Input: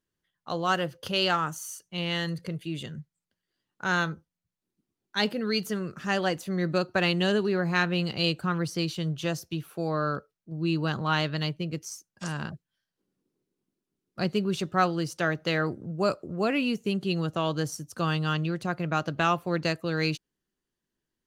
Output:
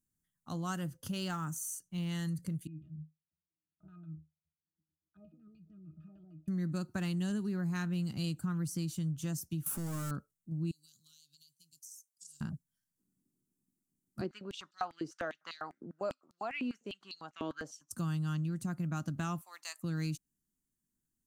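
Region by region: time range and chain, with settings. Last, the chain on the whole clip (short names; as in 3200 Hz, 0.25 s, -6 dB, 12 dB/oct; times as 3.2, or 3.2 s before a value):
0.87–2.09 high shelf 6500 Hz -5 dB + short-mantissa float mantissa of 6-bit
2.67–6.48 LFO low-pass square 6.6 Hz 530–3700 Hz + compressor 2.5:1, threshold -39 dBFS + octave resonator D#, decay 0.18 s
9.66–10.11 HPF 44 Hz + compressor 3:1, threshold -34 dBFS + power-law curve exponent 0.35
10.71–12.41 inverse Chebyshev high-pass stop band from 2100 Hz + compressor 8:1, threshold -48 dBFS
14.21–17.91 air absorption 200 m + stepped high-pass 10 Hz 390–4300 Hz
19.41–19.83 HPF 910 Hz 24 dB/oct + bell 1500 Hz -11 dB 0.26 oct
whole clip: EQ curve 260 Hz 0 dB, 460 Hz -18 dB, 850 Hz -12 dB, 1400 Hz -11 dB, 2600 Hz -15 dB, 4300 Hz -12 dB, 7600 Hz +5 dB; compressor 2.5:1, threshold -34 dBFS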